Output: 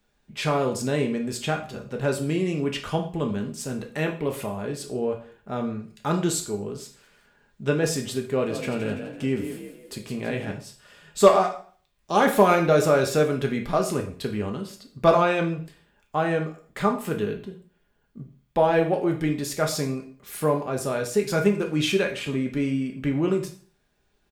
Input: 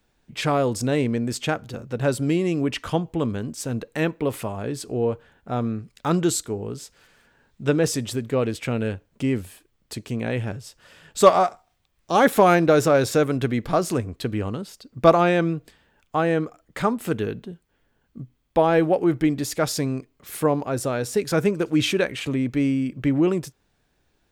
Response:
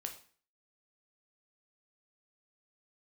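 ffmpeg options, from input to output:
-filter_complex "[0:a]aecho=1:1:4.9:0.37,asettb=1/sr,asplit=3[link_01][link_02][link_03];[link_01]atrim=end=8.224[link_04];[link_02]atrim=start=8.22:end=10.51,asetpts=PTS-STARTPTS,afade=type=in:duration=0.004:curve=qsin,afade=type=out:start_time=2.286:duration=0.004:curve=qsin,asplit=6[link_05][link_06][link_07][link_08][link_09][link_10];[link_06]adelay=167,afreqshift=32,volume=-9dB[link_11];[link_07]adelay=334,afreqshift=64,volume=-16.1dB[link_12];[link_08]adelay=501,afreqshift=96,volume=-23.3dB[link_13];[link_09]adelay=668,afreqshift=128,volume=-30.4dB[link_14];[link_10]adelay=835,afreqshift=160,volume=-37.5dB[link_15];[link_05][link_11][link_12][link_13][link_14][link_15]amix=inputs=6:normalize=0,atrim=end_sample=100989[link_16];[link_03]atrim=start=10.506[link_17];[link_04][link_16]acrossfade=duration=0.004:curve1=hsin:curve2=qsin[link_18];[link_18][link_17]acrossfade=duration=0.004:curve1=qsin:curve2=hsin[link_19];[1:a]atrim=start_sample=2205[link_20];[link_19][link_20]afir=irnorm=-1:irlink=0"

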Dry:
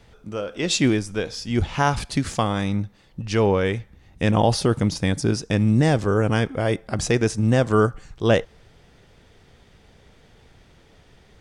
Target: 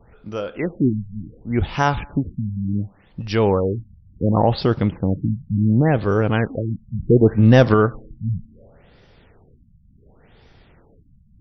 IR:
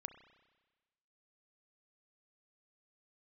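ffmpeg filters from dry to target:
-filter_complex "[0:a]asettb=1/sr,asplit=3[link_01][link_02][link_03];[link_01]atrim=end=7.094[link_04];[link_02]atrim=start=7.09:end=7.74,asetpts=PTS-STARTPTS,afade=type=in:duration=0.004:curve=qsin,afade=type=out:start_time=0.646:duration=0.004:curve=qsin,acontrast=65[link_05];[link_03]atrim=start=7.736[link_06];[link_04][link_05]acrossfade=duration=0.004:curve1=hsin:curve2=qsin[link_07];[link_07][link_06]acrossfade=duration=0.004:curve1=qsin:curve2=hsin,asplit=2[link_08][link_09];[1:a]atrim=start_sample=2205,asetrate=43659,aresample=44100[link_10];[link_09][link_10]afir=irnorm=-1:irlink=0,volume=-8.5dB[link_11];[link_08][link_11]amix=inputs=2:normalize=0,afftfilt=real='re*lt(b*sr/1024,210*pow(6100/210,0.5+0.5*sin(2*PI*0.69*pts/sr)))':imag='im*lt(b*sr/1024,210*pow(6100/210,0.5+0.5*sin(2*PI*0.69*pts/sr)))':win_size=1024:overlap=0.75"

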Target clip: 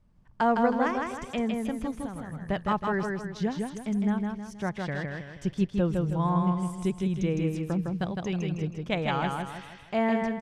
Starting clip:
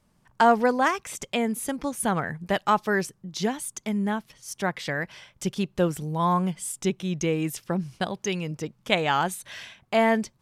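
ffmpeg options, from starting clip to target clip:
ffmpeg -i in.wav -filter_complex "[0:a]aemphasis=mode=reproduction:type=bsi,asplit=3[link_01][link_02][link_03];[link_01]afade=type=out:start_time=1.95:duration=0.02[link_04];[link_02]acompressor=threshold=-30dB:ratio=6,afade=type=in:start_time=1.95:duration=0.02,afade=type=out:start_time=2.35:duration=0.02[link_05];[link_03]afade=type=in:start_time=2.35:duration=0.02[link_06];[link_04][link_05][link_06]amix=inputs=3:normalize=0,asplit=2[link_07][link_08];[link_08]aecho=0:1:159|318|477|636|795:0.668|0.274|0.112|0.0461|0.0189[link_09];[link_07][link_09]amix=inputs=2:normalize=0,volume=-7dB" out.wav

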